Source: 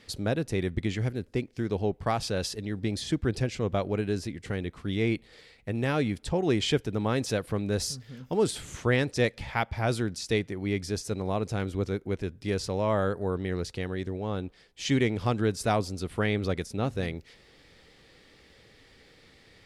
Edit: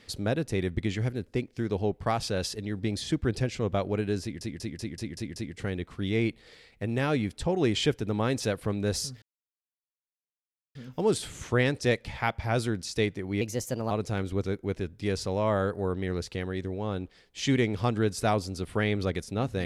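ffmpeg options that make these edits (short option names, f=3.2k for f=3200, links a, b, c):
-filter_complex "[0:a]asplit=10[a][b][c][d][e][f][g][h][i][j];[a]atrim=end=4.412[k];[b]atrim=start=4.218:end=4.412[l];[c]atrim=start=4.218:end=4.412[m];[d]atrim=start=4.218:end=4.412[n];[e]atrim=start=4.218:end=4.412[o];[f]atrim=start=4.218:end=4.412[p];[g]atrim=start=4.218:end=8.08,asetpts=PTS-STARTPTS,afade=t=out:st=3.858:d=0.004:c=hsin,apad=pad_dur=1.53[q];[h]atrim=start=8.08:end=10.744,asetpts=PTS-STARTPTS,afade=t=in:d=0.004:c=hsin[r];[i]atrim=start=10.74:end=11.33,asetpts=PTS-STARTPTS,asetrate=52479,aresample=44100[s];[j]atrim=start=11.326[t];[k][l]acrossfade=d=0.004:c1=hsin:c2=hsin[u];[u][m]acrossfade=d=0.004:c1=hsin:c2=hsin[v];[v][n]acrossfade=d=0.004:c1=hsin:c2=hsin[w];[w][o]acrossfade=d=0.004:c1=hsin:c2=hsin[x];[x][p]acrossfade=d=0.004:c1=hsin:c2=hsin[y];[q][r]concat=n=2:v=0:a=1[z];[y][z]acrossfade=d=0.004:c1=hsin:c2=hsin[aa];[aa][s]acrossfade=d=0.004:c1=hsin:c2=hsin[ab];[ab][t]acrossfade=d=0.004:c1=hsin:c2=hsin"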